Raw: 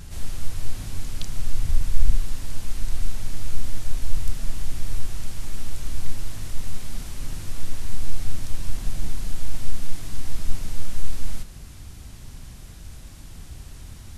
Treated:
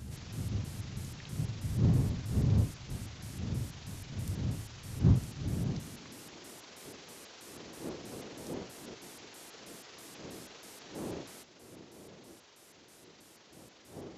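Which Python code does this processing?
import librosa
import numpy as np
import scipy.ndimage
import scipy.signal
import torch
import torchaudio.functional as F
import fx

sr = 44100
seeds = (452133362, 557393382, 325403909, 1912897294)

y = fx.pitch_trill(x, sr, semitones=-10.5, every_ms=161)
y = fx.dmg_wind(y, sr, seeds[0], corner_hz=93.0, level_db=-24.0)
y = fx.filter_sweep_highpass(y, sr, from_hz=110.0, to_hz=390.0, start_s=5.45, end_s=6.46, q=1.4)
y = y * librosa.db_to_amplitude(-7.5)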